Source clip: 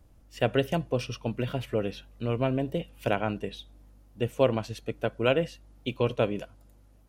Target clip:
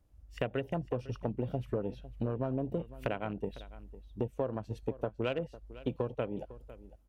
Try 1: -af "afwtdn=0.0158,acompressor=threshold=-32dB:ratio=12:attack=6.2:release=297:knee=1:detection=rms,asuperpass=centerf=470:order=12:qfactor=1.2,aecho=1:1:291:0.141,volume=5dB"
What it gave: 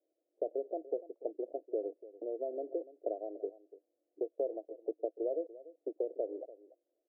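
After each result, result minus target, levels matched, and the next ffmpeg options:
echo 0.212 s early; 500 Hz band +2.5 dB
-af "afwtdn=0.0158,acompressor=threshold=-32dB:ratio=12:attack=6.2:release=297:knee=1:detection=rms,asuperpass=centerf=470:order=12:qfactor=1.2,aecho=1:1:503:0.141,volume=5dB"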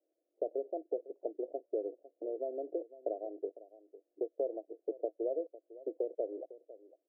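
500 Hz band +2.5 dB
-af "afwtdn=0.0158,acompressor=threshold=-32dB:ratio=12:attack=6.2:release=297:knee=1:detection=rms,aecho=1:1:503:0.141,volume=5dB"

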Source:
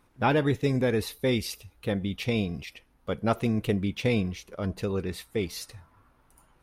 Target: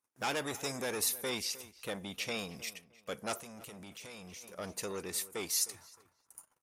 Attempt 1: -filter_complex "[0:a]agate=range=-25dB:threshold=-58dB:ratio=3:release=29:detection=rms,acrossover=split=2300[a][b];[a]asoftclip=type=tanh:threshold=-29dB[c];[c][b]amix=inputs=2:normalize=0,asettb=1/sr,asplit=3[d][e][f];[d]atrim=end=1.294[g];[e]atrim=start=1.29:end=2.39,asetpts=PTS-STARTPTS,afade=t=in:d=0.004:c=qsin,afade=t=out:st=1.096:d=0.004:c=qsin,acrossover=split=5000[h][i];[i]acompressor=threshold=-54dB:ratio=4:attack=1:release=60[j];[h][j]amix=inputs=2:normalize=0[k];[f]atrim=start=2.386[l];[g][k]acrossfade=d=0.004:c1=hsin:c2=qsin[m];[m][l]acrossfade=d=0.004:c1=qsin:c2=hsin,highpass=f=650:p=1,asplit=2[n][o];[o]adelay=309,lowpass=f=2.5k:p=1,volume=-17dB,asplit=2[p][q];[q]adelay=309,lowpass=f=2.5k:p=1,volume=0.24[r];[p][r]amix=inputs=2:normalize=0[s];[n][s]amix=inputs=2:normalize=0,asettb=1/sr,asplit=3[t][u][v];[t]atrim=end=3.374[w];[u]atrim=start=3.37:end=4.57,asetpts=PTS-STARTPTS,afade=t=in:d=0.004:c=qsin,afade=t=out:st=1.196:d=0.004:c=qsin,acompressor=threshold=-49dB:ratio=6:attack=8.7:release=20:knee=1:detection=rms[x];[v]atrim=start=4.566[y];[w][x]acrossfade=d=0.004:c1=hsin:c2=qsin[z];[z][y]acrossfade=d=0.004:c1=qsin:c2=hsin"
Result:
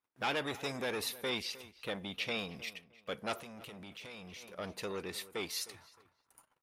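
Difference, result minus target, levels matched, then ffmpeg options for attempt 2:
8000 Hz band -8.0 dB
-filter_complex "[0:a]agate=range=-25dB:threshold=-58dB:ratio=3:release=29:detection=rms,acrossover=split=2300[a][b];[a]asoftclip=type=tanh:threshold=-29dB[c];[c][b]amix=inputs=2:normalize=0,asettb=1/sr,asplit=3[d][e][f];[d]atrim=end=1.294[g];[e]atrim=start=1.29:end=2.39,asetpts=PTS-STARTPTS,afade=t=in:d=0.004:c=qsin,afade=t=out:st=1.096:d=0.004:c=qsin,acrossover=split=5000[h][i];[i]acompressor=threshold=-54dB:ratio=4:attack=1:release=60[j];[h][j]amix=inputs=2:normalize=0[k];[f]atrim=start=2.386[l];[g][k]acrossfade=d=0.004:c1=hsin:c2=qsin[m];[m][l]acrossfade=d=0.004:c1=qsin:c2=hsin,highpass=f=650:p=1,highshelf=f=5k:t=q:w=1.5:g=9.5,asplit=2[n][o];[o]adelay=309,lowpass=f=2.5k:p=1,volume=-17dB,asplit=2[p][q];[q]adelay=309,lowpass=f=2.5k:p=1,volume=0.24[r];[p][r]amix=inputs=2:normalize=0[s];[n][s]amix=inputs=2:normalize=0,asettb=1/sr,asplit=3[t][u][v];[t]atrim=end=3.374[w];[u]atrim=start=3.37:end=4.57,asetpts=PTS-STARTPTS,afade=t=in:d=0.004:c=qsin,afade=t=out:st=1.196:d=0.004:c=qsin,acompressor=threshold=-49dB:ratio=6:attack=8.7:release=20:knee=1:detection=rms[x];[v]atrim=start=4.566[y];[w][x]acrossfade=d=0.004:c1=hsin:c2=qsin[z];[z][y]acrossfade=d=0.004:c1=qsin:c2=hsin"

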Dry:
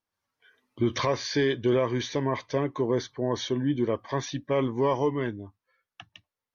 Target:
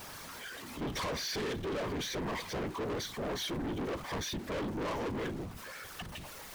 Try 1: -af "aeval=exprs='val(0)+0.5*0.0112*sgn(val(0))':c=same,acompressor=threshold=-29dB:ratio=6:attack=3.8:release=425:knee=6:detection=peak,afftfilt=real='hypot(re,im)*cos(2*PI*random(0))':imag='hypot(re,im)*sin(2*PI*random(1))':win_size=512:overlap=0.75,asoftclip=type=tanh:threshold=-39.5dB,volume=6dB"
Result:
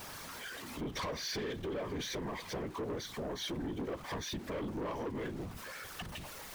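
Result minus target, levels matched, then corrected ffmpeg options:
compressor: peak gain reduction +11.5 dB
-af "aeval=exprs='val(0)+0.5*0.0112*sgn(val(0))':c=same,afftfilt=real='hypot(re,im)*cos(2*PI*random(0))':imag='hypot(re,im)*sin(2*PI*random(1))':win_size=512:overlap=0.75,asoftclip=type=tanh:threshold=-39.5dB,volume=6dB"

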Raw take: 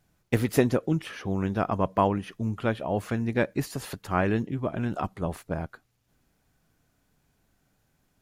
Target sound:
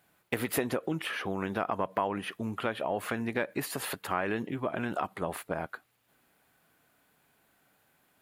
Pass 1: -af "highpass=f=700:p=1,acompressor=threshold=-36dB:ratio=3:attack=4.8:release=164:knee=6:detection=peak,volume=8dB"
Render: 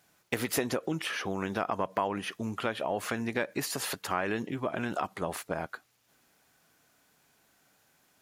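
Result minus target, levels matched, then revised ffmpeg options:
8000 Hz band +3.5 dB
-af "highpass=f=700:p=1,equalizer=f=5.9k:t=o:w=0.86:g=-11,acompressor=threshold=-36dB:ratio=3:attack=4.8:release=164:knee=6:detection=peak,volume=8dB"

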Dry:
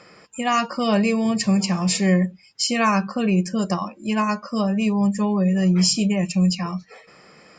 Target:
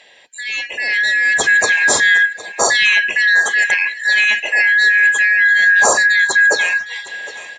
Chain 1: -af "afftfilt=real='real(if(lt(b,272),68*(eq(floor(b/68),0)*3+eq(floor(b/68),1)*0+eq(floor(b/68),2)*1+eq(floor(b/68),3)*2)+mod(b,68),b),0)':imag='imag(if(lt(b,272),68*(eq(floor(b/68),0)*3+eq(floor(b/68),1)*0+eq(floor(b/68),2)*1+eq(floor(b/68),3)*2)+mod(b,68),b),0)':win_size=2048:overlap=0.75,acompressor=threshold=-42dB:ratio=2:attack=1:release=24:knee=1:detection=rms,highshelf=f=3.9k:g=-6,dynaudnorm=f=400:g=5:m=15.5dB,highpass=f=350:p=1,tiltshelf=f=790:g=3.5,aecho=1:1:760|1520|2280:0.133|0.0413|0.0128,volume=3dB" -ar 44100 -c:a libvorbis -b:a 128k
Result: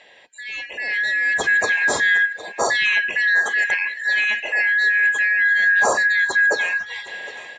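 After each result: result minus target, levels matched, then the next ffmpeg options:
8000 Hz band -6.5 dB; compressor: peak gain reduction +6 dB
-af "afftfilt=real='real(if(lt(b,272),68*(eq(floor(b/68),0)*3+eq(floor(b/68),1)*0+eq(floor(b/68),2)*1+eq(floor(b/68),3)*2)+mod(b,68),b),0)':imag='imag(if(lt(b,272),68*(eq(floor(b/68),0)*3+eq(floor(b/68),1)*0+eq(floor(b/68),2)*1+eq(floor(b/68),3)*2)+mod(b,68),b),0)':win_size=2048:overlap=0.75,acompressor=threshold=-42dB:ratio=2:attack=1:release=24:knee=1:detection=rms,highshelf=f=3.9k:g=5,dynaudnorm=f=400:g=5:m=15.5dB,highpass=f=350:p=1,tiltshelf=f=790:g=3.5,aecho=1:1:760|1520|2280:0.133|0.0413|0.0128,volume=3dB" -ar 44100 -c:a libvorbis -b:a 128k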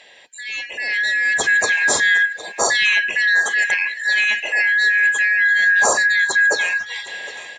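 compressor: peak gain reduction +6 dB
-af "afftfilt=real='real(if(lt(b,272),68*(eq(floor(b/68),0)*3+eq(floor(b/68),1)*0+eq(floor(b/68),2)*1+eq(floor(b/68),3)*2)+mod(b,68),b),0)':imag='imag(if(lt(b,272),68*(eq(floor(b/68),0)*3+eq(floor(b/68),1)*0+eq(floor(b/68),2)*1+eq(floor(b/68),3)*2)+mod(b,68),b),0)':win_size=2048:overlap=0.75,acompressor=threshold=-30dB:ratio=2:attack=1:release=24:knee=1:detection=rms,highshelf=f=3.9k:g=5,dynaudnorm=f=400:g=5:m=15.5dB,highpass=f=350:p=1,tiltshelf=f=790:g=3.5,aecho=1:1:760|1520|2280:0.133|0.0413|0.0128,volume=3dB" -ar 44100 -c:a libvorbis -b:a 128k

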